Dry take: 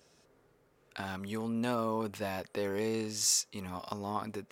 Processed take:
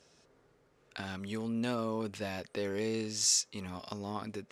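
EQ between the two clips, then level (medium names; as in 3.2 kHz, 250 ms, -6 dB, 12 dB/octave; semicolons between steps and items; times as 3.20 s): dynamic bell 940 Hz, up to -6 dB, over -50 dBFS, Q 1.3; distance through air 74 m; treble shelf 4.5 kHz +9 dB; 0.0 dB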